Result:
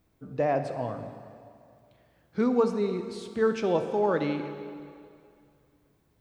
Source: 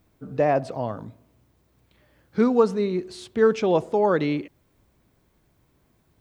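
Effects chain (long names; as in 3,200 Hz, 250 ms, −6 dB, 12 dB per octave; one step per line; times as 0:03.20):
dense smooth reverb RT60 2.4 s, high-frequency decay 0.9×, DRR 7 dB
level −5.5 dB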